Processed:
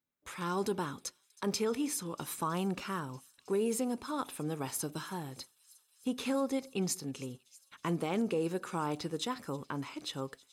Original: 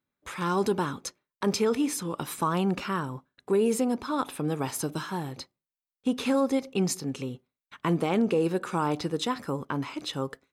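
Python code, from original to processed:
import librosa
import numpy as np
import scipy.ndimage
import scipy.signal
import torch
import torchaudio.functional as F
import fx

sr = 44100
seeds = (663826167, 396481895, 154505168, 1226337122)

p1 = fx.high_shelf(x, sr, hz=5300.0, db=6.0)
p2 = p1 + fx.echo_wet_highpass(p1, sr, ms=319, feedback_pct=83, hz=4100.0, wet_db=-20, dry=0)
y = F.gain(torch.from_numpy(p2), -7.5).numpy()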